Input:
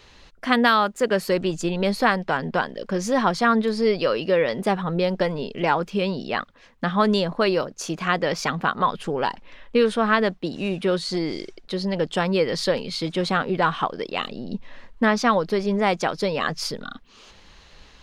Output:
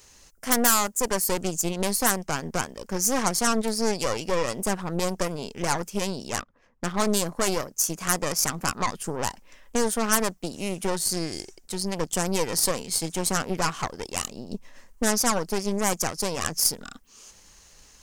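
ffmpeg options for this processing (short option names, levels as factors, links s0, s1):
-filter_complex "[0:a]aeval=exprs='0.596*(cos(1*acos(clip(val(0)/0.596,-1,1)))-cos(1*PI/2))+0.0944*(cos(8*acos(clip(val(0)/0.596,-1,1)))-cos(8*PI/2))':c=same,aexciter=amount=10.9:drive=4:freq=5600,asettb=1/sr,asplit=3[s0][s1][s2];[s0]atrim=end=6.404[s3];[s1]atrim=start=6.4:end=7.17,asetpts=PTS-STARTPTS,afade=t=in:d=0.004:c=qsin,afade=t=out:st=0.766:d=0.004:c=qsin,adynamicsmooth=sensitivity=6.5:basefreq=1600[s4];[s2]atrim=start=7.166[s5];[s3][s4]acrossfade=d=0.004:c1=hsin:c2=qsin[s6];[s6][s5]acrossfade=d=0.004:c1=qsin:c2=hsin,volume=0.447"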